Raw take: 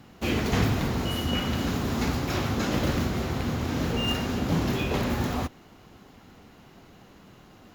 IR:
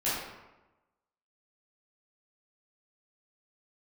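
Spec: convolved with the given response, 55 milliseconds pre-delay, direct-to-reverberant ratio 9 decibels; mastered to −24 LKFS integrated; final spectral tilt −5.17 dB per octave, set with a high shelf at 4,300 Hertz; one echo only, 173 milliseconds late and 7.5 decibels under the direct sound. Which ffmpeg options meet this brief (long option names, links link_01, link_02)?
-filter_complex "[0:a]highshelf=frequency=4300:gain=-3.5,aecho=1:1:173:0.422,asplit=2[link_01][link_02];[1:a]atrim=start_sample=2205,adelay=55[link_03];[link_02][link_03]afir=irnorm=-1:irlink=0,volume=-18.5dB[link_04];[link_01][link_04]amix=inputs=2:normalize=0,volume=2.5dB"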